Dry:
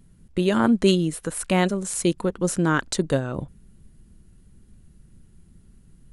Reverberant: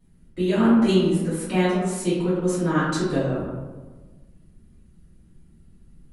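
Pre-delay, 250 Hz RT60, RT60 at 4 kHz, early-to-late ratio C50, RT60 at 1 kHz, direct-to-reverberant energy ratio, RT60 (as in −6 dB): 3 ms, 1.6 s, 0.65 s, 0.0 dB, 1.3 s, −14.0 dB, 1.3 s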